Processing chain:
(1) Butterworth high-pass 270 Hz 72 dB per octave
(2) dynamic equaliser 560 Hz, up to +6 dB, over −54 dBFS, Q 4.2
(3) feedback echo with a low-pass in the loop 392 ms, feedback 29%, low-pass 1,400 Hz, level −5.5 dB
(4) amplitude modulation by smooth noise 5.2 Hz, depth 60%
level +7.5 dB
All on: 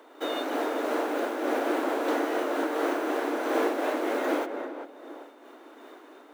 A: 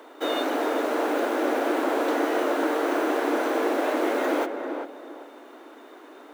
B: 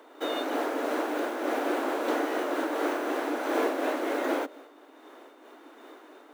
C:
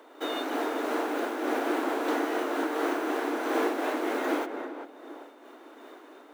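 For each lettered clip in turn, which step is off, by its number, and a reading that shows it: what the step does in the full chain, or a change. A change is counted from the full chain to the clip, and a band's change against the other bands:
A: 4, change in momentary loudness spread −2 LU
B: 3, change in momentary loudness spread −9 LU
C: 2, 500 Hz band −2.0 dB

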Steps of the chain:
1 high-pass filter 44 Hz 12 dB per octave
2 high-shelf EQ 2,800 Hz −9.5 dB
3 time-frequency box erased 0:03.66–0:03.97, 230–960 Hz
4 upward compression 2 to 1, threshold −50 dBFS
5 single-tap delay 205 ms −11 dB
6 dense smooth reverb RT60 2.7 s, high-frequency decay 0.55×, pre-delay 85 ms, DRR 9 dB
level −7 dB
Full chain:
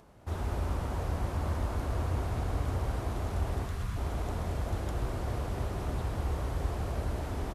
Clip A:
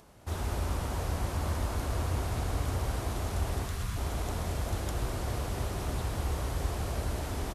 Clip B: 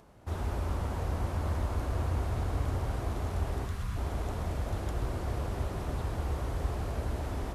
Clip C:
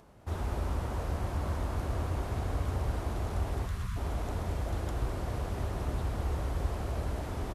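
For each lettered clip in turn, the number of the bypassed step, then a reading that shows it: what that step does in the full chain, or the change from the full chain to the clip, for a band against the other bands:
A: 2, 8 kHz band +8.0 dB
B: 5, echo-to-direct ratio −6.5 dB to −9.0 dB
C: 6, echo-to-direct ratio −6.5 dB to −11.0 dB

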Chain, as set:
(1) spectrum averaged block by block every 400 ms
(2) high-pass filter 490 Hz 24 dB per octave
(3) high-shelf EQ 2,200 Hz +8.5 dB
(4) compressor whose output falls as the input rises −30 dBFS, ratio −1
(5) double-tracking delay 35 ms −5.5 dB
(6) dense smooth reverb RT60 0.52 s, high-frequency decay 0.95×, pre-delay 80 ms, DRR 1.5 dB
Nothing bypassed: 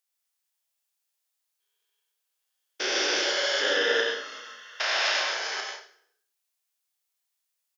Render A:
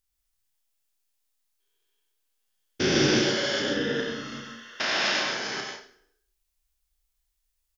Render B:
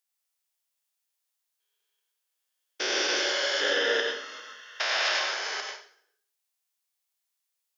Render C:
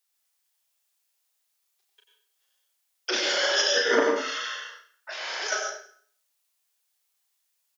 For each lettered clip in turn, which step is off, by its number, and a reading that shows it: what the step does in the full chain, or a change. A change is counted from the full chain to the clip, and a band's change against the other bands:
2, 250 Hz band +15.5 dB
5, change in integrated loudness −1.0 LU
1, 250 Hz band +5.5 dB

